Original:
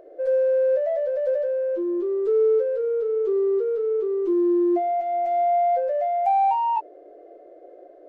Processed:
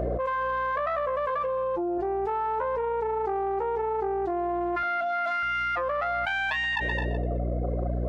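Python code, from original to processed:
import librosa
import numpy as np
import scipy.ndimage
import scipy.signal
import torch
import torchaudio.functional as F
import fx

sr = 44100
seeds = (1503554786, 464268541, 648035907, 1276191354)

y = fx.self_delay(x, sr, depth_ms=0.62)
y = fx.rider(y, sr, range_db=10, speed_s=0.5)
y = fx.high_shelf(y, sr, hz=2200.0, db=-9.5)
y = fx.dereverb_blind(y, sr, rt60_s=1.3)
y = fx.low_shelf(y, sr, hz=490.0, db=-11.0)
y = fx.echo_feedback(y, sr, ms=125, feedback_pct=47, wet_db=-20.5)
y = fx.add_hum(y, sr, base_hz=60, snr_db=20)
y = fx.comb(y, sr, ms=6.0, depth=0.77, at=(1.29, 1.98))
y = fx.steep_highpass(y, sr, hz=200.0, slope=72, at=(4.83, 5.43))
y = y + 10.0 ** (-21.5 / 20.0) * np.pad(y, (int(214 * sr / 1000.0), 0))[:len(y)]
y = fx.env_flatten(y, sr, amount_pct=100)
y = y * 10.0 ** (-3.5 / 20.0)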